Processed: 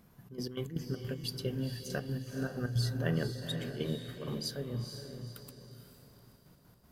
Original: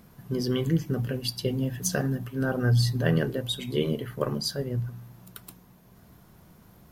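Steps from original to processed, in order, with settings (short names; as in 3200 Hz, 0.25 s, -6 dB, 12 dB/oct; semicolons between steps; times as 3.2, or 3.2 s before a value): step gate "xxx.x.x.xx.x.xxx" 158 bpm -12 dB; diffused feedback echo 0.476 s, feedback 41%, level -7 dB; gain -8 dB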